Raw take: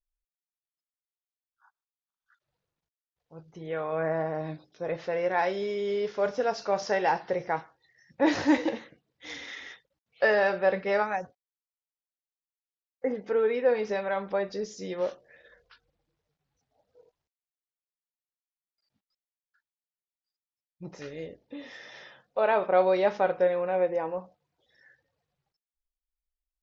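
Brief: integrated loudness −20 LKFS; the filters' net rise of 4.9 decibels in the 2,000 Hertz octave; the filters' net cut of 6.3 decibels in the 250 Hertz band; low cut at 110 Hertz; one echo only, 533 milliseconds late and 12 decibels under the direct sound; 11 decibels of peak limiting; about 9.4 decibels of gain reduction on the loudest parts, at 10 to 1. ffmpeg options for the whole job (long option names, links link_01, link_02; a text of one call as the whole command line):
ffmpeg -i in.wav -af "highpass=110,equalizer=frequency=250:width_type=o:gain=-9,equalizer=frequency=2000:width_type=o:gain=6,acompressor=threshold=-27dB:ratio=10,alimiter=level_in=3.5dB:limit=-24dB:level=0:latency=1,volume=-3.5dB,aecho=1:1:533:0.251,volume=18dB" out.wav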